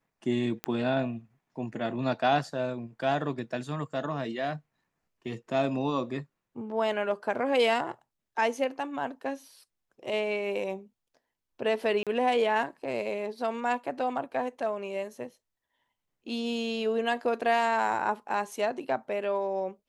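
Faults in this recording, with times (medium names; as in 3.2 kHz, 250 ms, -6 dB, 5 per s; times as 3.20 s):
0.64 s: pop -15 dBFS
12.03–12.07 s: dropout 37 ms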